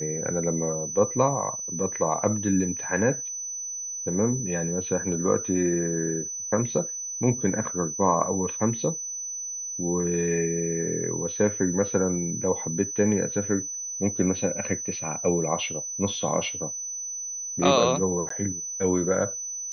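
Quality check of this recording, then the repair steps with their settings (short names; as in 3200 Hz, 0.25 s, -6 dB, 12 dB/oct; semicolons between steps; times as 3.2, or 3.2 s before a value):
tone 6000 Hz -31 dBFS
18.29–18.3 gap 14 ms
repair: notch 6000 Hz, Q 30; interpolate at 18.29, 14 ms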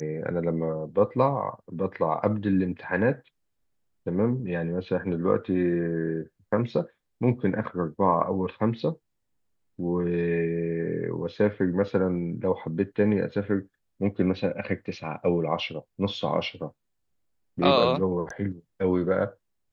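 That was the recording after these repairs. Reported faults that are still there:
none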